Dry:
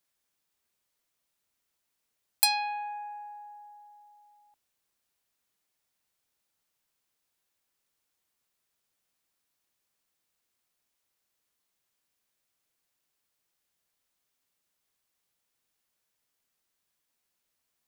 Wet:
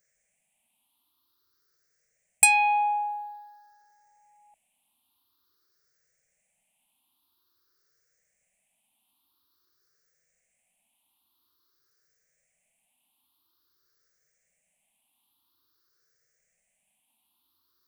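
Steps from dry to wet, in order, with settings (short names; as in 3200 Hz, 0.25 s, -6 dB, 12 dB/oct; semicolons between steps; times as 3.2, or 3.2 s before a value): moving spectral ripple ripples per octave 0.54, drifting +0.49 Hz, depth 22 dB; gain +1 dB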